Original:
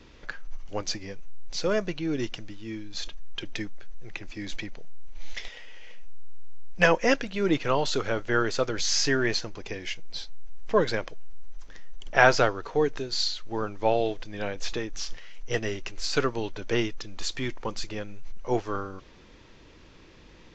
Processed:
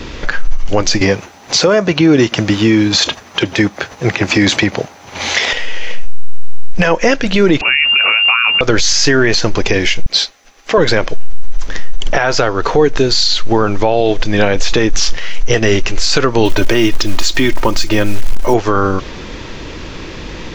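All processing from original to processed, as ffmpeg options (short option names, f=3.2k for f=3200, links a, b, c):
-filter_complex "[0:a]asettb=1/sr,asplit=3[a][b][c];[a]atrim=end=1.014[d];[b]atrim=start=1.01:end=5.53,asetpts=PTS-STARTPTS,afade=t=in:d=0.004:c=qsin,afade=t=out:st=4.516:d=0.004:c=qsin,highpass=f=82:w=0.5412,highpass=f=82:w=1.3066,acontrast=72,equalizer=f=900:t=o:w=1.7:g=5[e];[c]atrim=start=5.526[f];[d][e]acrossfade=d=0.004:c1=hsin:c2=qsin[g];[g][f]acrossfade=d=0.004:c1=qsin:c2=hsin,asettb=1/sr,asplit=3[h][i][j];[h]atrim=end=7.614[k];[i]atrim=start=7.61:end=8.61,asetpts=PTS-STARTPTS,afade=t=in:d=0.004:c=qsin,afade=t=out:st=0.996:d=0.004:c=qsin,equalizer=f=930:w=0.65:g=-5.5,acompressor=threshold=-31dB:ratio=12:attack=3.2:release=140:knee=1:detection=peak,lowpass=f=2.4k:t=q:w=0.5098,lowpass=f=2.4k:t=q:w=0.6013,lowpass=f=2.4k:t=q:w=0.9,lowpass=f=2.4k:t=q:w=2.563,afreqshift=-2800[l];[j]atrim=start=8.606[m];[k][l]acrossfade=d=0.004:c1=hsin:c2=qsin[n];[n][m]acrossfade=d=0.004:c1=qsin:c2=hsin,asettb=1/sr,asplit=3[o][p][q];[o]atrim=end=10.064[r];[p]atrim=start=10.06:end=10.78,asetpts=PTS-STARTPTS,afade=t=in:d=0.004:c=qsin,afade=t=out:st=0.716:d=0.004:c=qsin,highpass=f=570:p=1,bandreject=f=910:w=7.8[s];[q]atrim=start=10.776[t];[r][s]acrossfade=d=0.004:c1=hsin:c2=qsin[u];[u][t]acrossfade=d=0.004:c1=qsin:c2=hsin,asettb=1/sr,asplit=3[v][w][x];[v]atrim=end=16.454[y];[w]atrim=start=16.45:end=18.54,asetpts=PTS-STARTPTS,afade=t=in:d=0.004:c=qsin,afade=t=out:st=2.086:d=0.004:c=qsin,equalizer=f=99:w=4.8:g=2,aecho=1:1:3.2:0.54,atrim=end_sample=92169,acrusher=bits=7:mode=log:mix=0:aa=0.000001[z];[x]atrim=start=18.536[aa];[y][z]acrossfade=d=0.004:c1=hsin:c2=qsin[ab];[ab][aa]acrossfade=d=0.004:c1=qsin:c2=hsin,acompressor=threshold=-28dB:ratio=12,alimiter=level_in=26dB:limit=-1dB:release=50:level=0:latency=1,volume=-1dB"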